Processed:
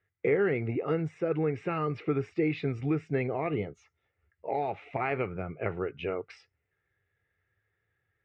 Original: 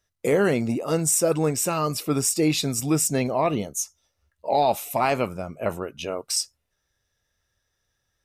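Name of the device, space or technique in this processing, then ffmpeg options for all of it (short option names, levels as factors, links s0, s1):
bass amplifier: -af "acompressor=threshold=0.0631:ratio=4,highpass=89,equalizer=f=100:t=q:w=4:g=6,equalizer=f=230:t=q:w=4:g=-10,equalizer=f=420:t=q:w=4:g=5,equalizer=f=600:t=q:w=4:g=-9,equalizer=f=1000:t=q:w=4:g=-10,equalizer=f=2100:t=q:w=4:g=7,lowpass=f=2300:w=0.5412,lowpass=f=2300:w=1.3066"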